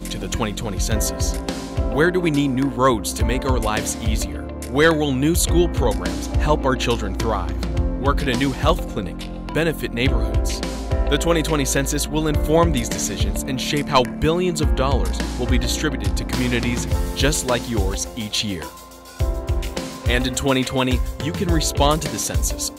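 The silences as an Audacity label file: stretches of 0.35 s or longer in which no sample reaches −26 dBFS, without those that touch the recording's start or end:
18.680000	19.190000	silence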